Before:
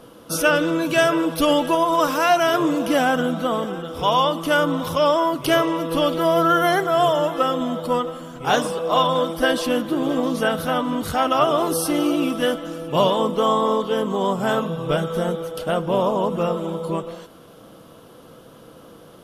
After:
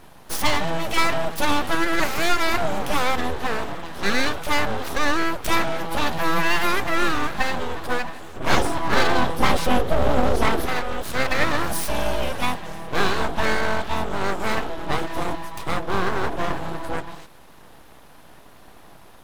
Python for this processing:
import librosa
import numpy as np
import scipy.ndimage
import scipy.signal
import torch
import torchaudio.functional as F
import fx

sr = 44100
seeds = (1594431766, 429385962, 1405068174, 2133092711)

y = fx.low_shelf(x, sr, hz=340.0, db=12.0, at=(8.36, 10.66))
y = np.abs(y)